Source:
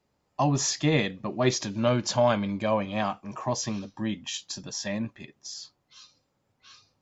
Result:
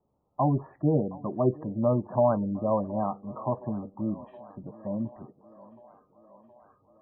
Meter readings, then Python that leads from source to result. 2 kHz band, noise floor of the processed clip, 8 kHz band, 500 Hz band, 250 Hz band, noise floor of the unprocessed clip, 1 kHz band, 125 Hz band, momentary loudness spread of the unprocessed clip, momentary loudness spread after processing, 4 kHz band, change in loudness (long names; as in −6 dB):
below −20 dB, −73 dBFS, can't be measured, 0.0 dB, 0.0 dB, −75 dBFS, −1.5 dB, 0.0 dB, 15 LU, 14 LU, below −40 dB, −1.0 dB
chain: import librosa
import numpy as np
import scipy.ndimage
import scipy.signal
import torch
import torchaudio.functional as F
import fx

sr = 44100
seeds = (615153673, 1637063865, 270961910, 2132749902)

y = scipy.signal.sosfilt(scipy.signal.butter(4, 1100.0, 'lowpass', fs=sr, output='sos'), x)
y = fx.spec_gate(y, sr, threshold_db=-25, keep='strong')
y = fx.echo_thinned(y, sr, ms=719, feedback_pct=74, hz=250.0, wet_db=-19)